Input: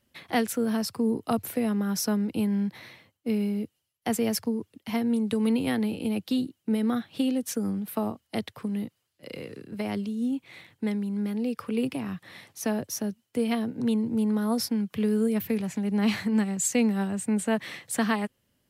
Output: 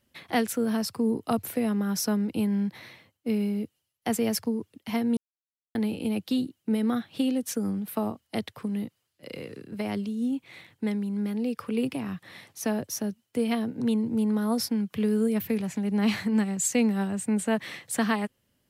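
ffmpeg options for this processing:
-filter_complex "[0:a]asplit=3[s0][s1][s2];[s0]atrim=end=5.17,asetpts=PTS-STARTPTS,afade=t=out:st=5.166:d=0.004:c=hsin[s3];[s1]atrim=start=5.17:end=5.75,asetpts=PTS-STARTPTS,volume=0[s4];[s2]atrim=start=5.75,asetpts=PTS-STARTPTS,afade=t=in:d=0.004:c=hsin[s5];[s3][s4][s5]concat=n=3:v=0:a=1"

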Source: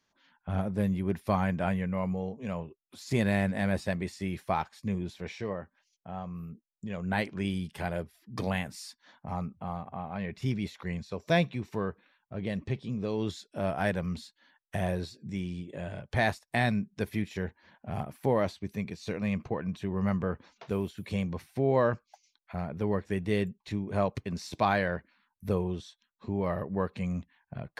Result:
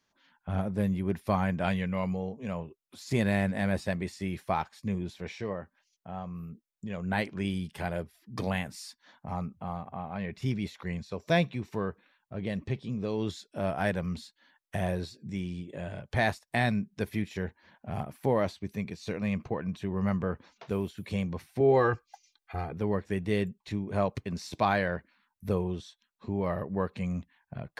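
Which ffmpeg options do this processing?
-filter_complex "[0:a]asettb=1/sr,asplit=3[s0][s1][s2];[s0]atrim=end=1.644[s3];[s1]atrim=start=1.64:end=2.17,asetpts=PTS-STARTPTS,afade=t=in:d=0.004:c=qsin,afade=t=out:st=0.526:d=0.004:c=qsin,equalizer=f=4000:w=1.1:g=12.5[s4];[s2]atrim=start=2.166[s5];[s3][s4]acrossfade=d=0.004:c1=hsin:c2=qsin[s6];[s6][s5]acrossfade=d=0.004:c1=qsin:c2=hsin,asettb=1/sr,asplit=3[s7][s8][s9];[s7]atrim=end=21.604[s10];[s8]atrim=start=21.6:end=22.73,asetpts=PTS-STARTPTS,afade=t=in:d=0.004:c=qsin,afade=t=out:st=1.126:d=0.004:c=qsin,aecho=1:1:2.5:0.95,atrim=end_sample=49833[s11];[s9]atrim=start=22.726[s12];[s10][s11]acrossfade=d=0.004:c1=hsin:c2=qsin[s13];[s13][s12]acrossfade=d=0.004:c1=qsin:c2=hsin"

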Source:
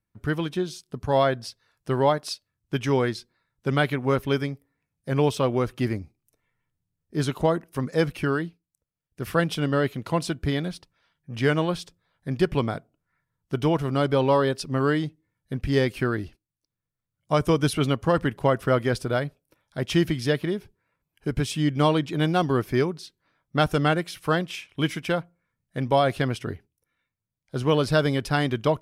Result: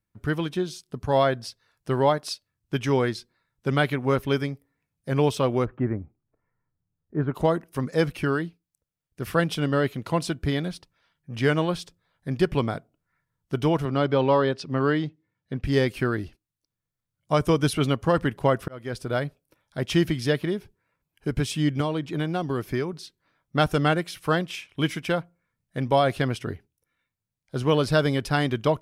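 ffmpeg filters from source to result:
-filter_complex "[0:a]asplit=3[s0][s1][s2];[s0]afade=t=out:st=5.64:d=0.02[s3];[s1]lowpass=f=1600:w=0.5412,lowpass=f=1600:w=1.3066,afade=t=in:st=5.64:d=0.02,afade=t=out:st=7.34:d=0.02[s4];[s2]afade=t=in:st=7.34:d=0.02[s5];[s3][s4][s5]amix=inputs=3:normalize=0,asettb=1/sr,asplit=3[s6][s7][s8];[s6]atrim=end=13.854[s9];[s7]atrim=start=13.85:end=15.64,asetpts=PTS-STARTPTS,afade=t=in:d=0.004:c=qsin,afade=t=out:st=1.786:d=0.004:c=qsin,highpass=100,lowpass=4600[s10];[s8]atrim=start=15.636[s11];[s9][s10]acrossfade=d=0.004:c1=hsin:c2=qsin[s12];[s12][s11]acrossfade=d=0.004:c1=qsin:c2=hsin,asettb=1/sr,asplit=3[s13][s14][s15];[s13]atrim=end=21.804[s16];[s14]atrim=start=21.8:end=22.93,asetpts=PTS-STARTPTS,afade=t=in:d=0.004:c=qsin,afade=t=out:st=1.126:d=0.004:c=qsin,acrossover=split=850|2300[s17][s18][s19];[s17]acompressor=threshold=0.0631:ratio=4[s20];[s18]acompressor=threshold=0.0141:ratio=4[s21];[s19]acompressor=threshold=0.00631:ratio=4[s22];[s20][s21][s22]amix=inputs=3:normalize=0[s23];[s15]atrim=start=22.926[s24];[s16][s23]acrossfade=d=0.004:c1=hsin:c2=qsin[s25];[s25][s24]acrossfade=d=0.004:c1=qsin:c2=hsin,asplit=2[s26][s27];[s26]atrim=end=18.68,asetpts=PTS-STARTPTS,afade=t=out:st=18.676:d=0.004:c=hsin[s28];[s27]atrim=start=18.68,asetpts=PTS-STARTPTS,afade=t=in:d=0.55[s29];[s28][s29]concat=n=2:v=0:a=1"

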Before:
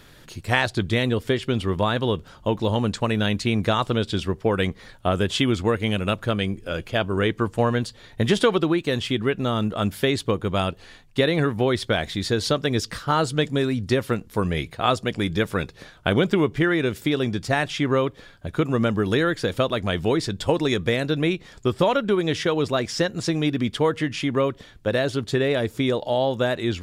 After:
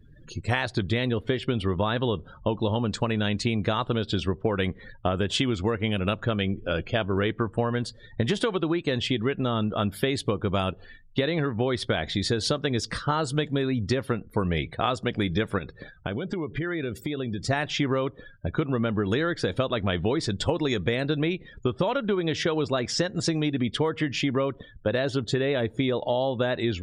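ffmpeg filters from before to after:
-filter_complex "[0:a]asettb=1/sr,asplit=3[s0][s1][s2];[s0]atrim=end=15.584[s3];[s1]atrim=start=15.58:end=17.43,asetpts=PTS-STARTPTS,afade=t=in:d=0.004:c=qsin,afade=t=out:st=1.846:d=0.004:c=qsin,acompressor=threshold=0.0398:ratio=8:attack=3.2:release=140:knee=1:detection=peak[s4];[s2]atrim=start=17.426[s5];[s3][s4]acrossfade=d=0.004:c1=hsin:c2=qsin[s6];[s6][s5]acrossfade=d=0.004:c1=qsin:c2=hsin,afftdn=nr=35:nf=-43,acompressor=threshold=0.0631:ratio=6,volume=1.33"

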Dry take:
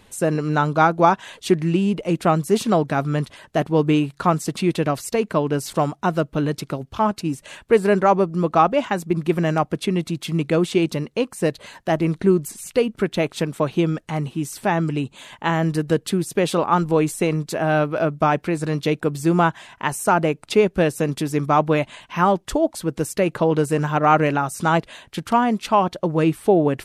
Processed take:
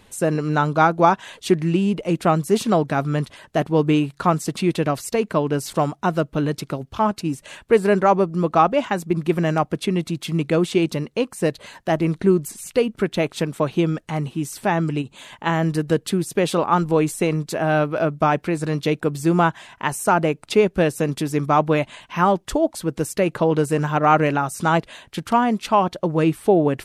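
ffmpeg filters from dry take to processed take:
-filter_complex "[0:a]asplit=3[s0][s1][s2];[s0]afade=t=out:st=15.01:d=0.02[s3];[s1]acompressor=threshold=0.0398:ratio=6:attack=3.2:release=140:knee=1:detection=peak,afade=t=in:st=15.01:d=0.02,afade=t=out:st=15.45:d=0.02[s4];[s2]afade=t=in:st=15.45:d=0.02[s5];[s3][s4][s5]amix=inputs=3:normalize=0"

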